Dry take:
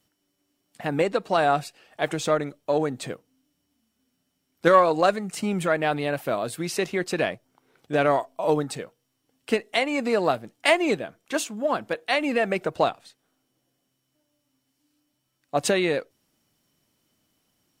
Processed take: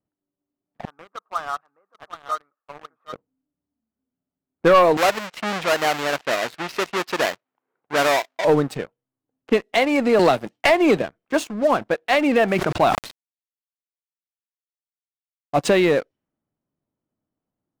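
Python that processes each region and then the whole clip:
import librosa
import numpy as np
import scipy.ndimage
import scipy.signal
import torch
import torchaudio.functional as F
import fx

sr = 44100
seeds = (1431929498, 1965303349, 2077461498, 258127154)

y = fx.chain(x, sr, fx.cvsd(bps=64000),
    fx.bandpass_q(hz=1200.0, q=7.4),
    fx.echo_single(ms=773, db=-8.0), at=(0.85, 3.13))
y = fx.chain(y, sr, fx.halfwave_hold(),
    fx.highpass(hz=1300.0, slope=6),
    fx.peak_eq(hz=9300.0, db=-12.5, octaves=0.21), at=(4.97, 8.45))
y = fx.chain(y, sr, fx.highpass(hz=43.0, slope=12),
    fx.gate_hold(open_db=-36.0, close_db=-40.0, hold_ms=71.0, range_db=-21, attack_ms=1.4, release_ms=100.0),
    fx.band_squash(depth_pct=100), at=(10.19, 11.02))
y = fx.chain(y, sr, fx.peak_eq(hz=490.0, db=-9.5, octaves=0.35),
    fx.quant_dither(seeds[0], bits=8, dither='none'),
    fx.sustainer(db_per_s=65.0), at=(12.48, 15.59))
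y = fx.env_lowpass(y, sr, base_hz=1100.0, full_db=-22.0)
y = fx.high_shelf(y, sr, hz=4300.0, db=-11.5)
y = fx.leveller(y, sr, passes=3)
y = F.gain(torch.from_numpy(y), -4.0).numpy()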